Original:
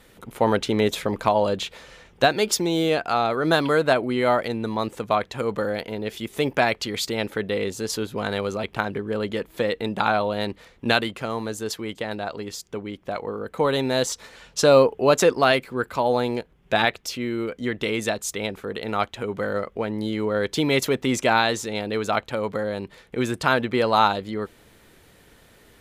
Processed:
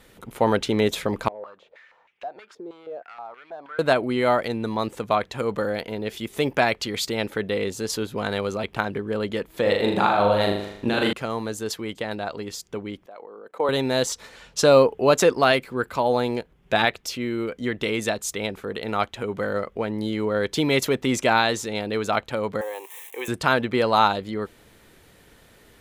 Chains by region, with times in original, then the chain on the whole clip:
1.28–3.79 compressor 2.5:1, threshold -27 dBFS + hard clip -24.5 dBFS + stepped band-pass 6.3 Hz 440–2400 Hz
9.61–11.13 bell 630 Hz +3.5 dB 2.2 oct + negative-ratio compressor -20 dBFS, ratio -0.5 + flutter echo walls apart 6.8 m, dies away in 0.73 s
13.06–13.69 HPF 470 Hz + tilt shelf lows +6 dB, about 1300 Hz + level quantiser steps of 21 dB
22.61–23.28 switching spikes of -29.5 dBFS + resonant high-pass 680 Hz, resonance Q 2.1 + fixed phaser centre 950 Hz, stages 8
whole clip: dry

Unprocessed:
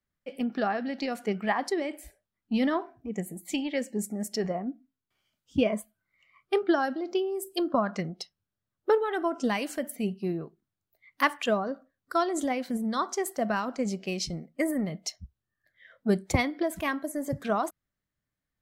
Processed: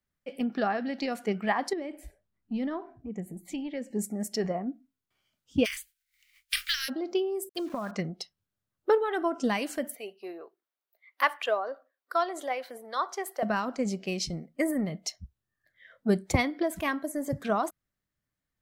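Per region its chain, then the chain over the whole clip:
1.73–3.91 tilt -2 dB/oct + compressor 1.5:1, threshold -45 dBFS
5.64–6.88 spectral contrast lowered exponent 0.47 + inverse Chebyshev band-stop 140–810 Hz, stop band 50 dB
7.49–7.91 compressor, threshold -29 dBFS + sample gate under -46 dBFS + mismatched tape noise reduction decoder only
9.95–13.43 HPF 450 Hz 24 dB/oct + bell 7300 Hz -9 dB 1 oct
whole clip: dry

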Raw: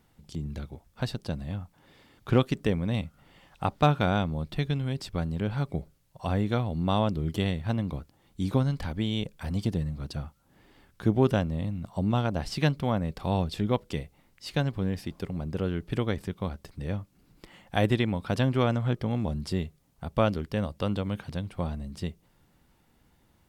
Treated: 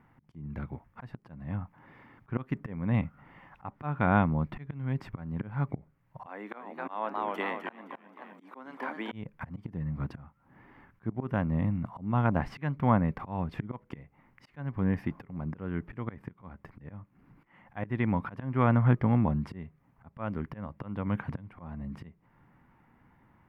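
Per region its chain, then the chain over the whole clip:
6.26–9.12 Bessel high-pass 460 Hz, order 8 + high shelf 4400 Hz +4 dB + warbling echo 0.261 s, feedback 49%, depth 146 cents, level -8 dB
whole clip: high shelf 7400 Hz -9 dB; auto swell 0.35 s; graphic EQ 125/250/1000/2000/4000/8000 Hz +8/+7/+11/+11/-12/-11 dB; gain -4.5 dB

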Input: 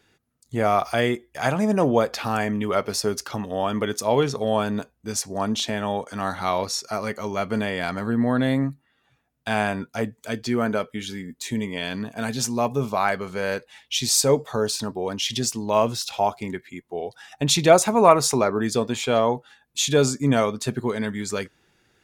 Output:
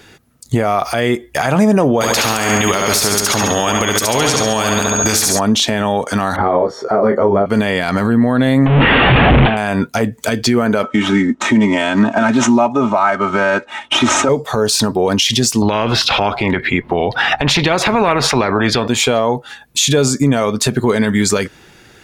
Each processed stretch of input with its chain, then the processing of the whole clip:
2–5.38 whine 6600 Hz -33 dBFS + feedback echo 69 ms, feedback 47%, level -7 dB + spectral compressor 2:1
6.36–7.46 polynomial smoothing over 41 samples + bell 430 Hz +13 dB 1.9 oct + detuned doubles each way 16 cents
8.66–9.57 delta modulation 16 kbps, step -18.5 dBFS + dynamic EQ 1600 Hz, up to -5 dB, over -38 dBFS, Q 0.96
10.83–14.29 median filter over 9 samples + speaker cabinet 120–7400 Hz, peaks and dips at 200 Hz +5 dB, 810 Hz +9 dB, 1300 Hz +9 dB, 4500 Hz -8 dB + comb 3.2 ms, depth 94%
15.62–18.88 air absorption 380 m + spectral compressor 2:1
whole clip: compressor 6:1, threshold -27 dBFS; maximiser +22.5 dB; gain -3 dB

